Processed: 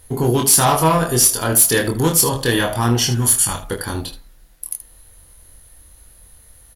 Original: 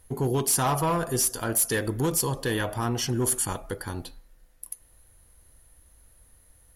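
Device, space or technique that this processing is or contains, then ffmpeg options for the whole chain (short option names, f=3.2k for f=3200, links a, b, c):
presence and air boost: -filter_complex "[0:a]asettb=1/sr,asplit=3[a][b][c];[a]atrim=end=3.104[d];[b]atrim=start=3.1:end=3.68,asetpts=PTS-STARTPTS,afade=t=in:d=0.004:c=qsin,afade=t=out:st=0.576:d=0.004:c=qsin,equalizer=f=410:t=o:w=1.6:g=-9.5[e];[c]atrim=start=3.676[f];[d][e]acrossfade=d=0.004:c1=hsin:c2=qsin[g];[g][f]acrossfade=d=0.004:c1=qsin:c2=hsin,equalizer=f=3.8k:t=o:w=0.87:g=4,highshelf=f=9.5k:g=4,aecho=1:1:25|77:0.668|0.251,volume=7.5dB"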